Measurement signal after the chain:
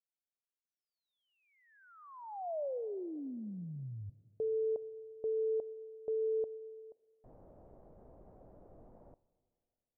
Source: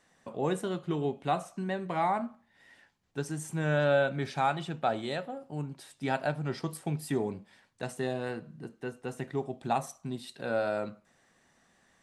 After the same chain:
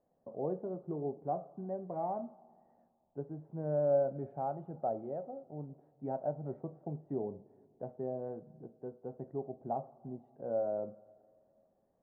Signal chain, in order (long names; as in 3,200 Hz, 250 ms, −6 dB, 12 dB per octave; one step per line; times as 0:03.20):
transistor ladder low-pass 750 Hz, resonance 45%
dense smooth reverb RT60 2.3 s, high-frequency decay 0.75×, DRR 19 dB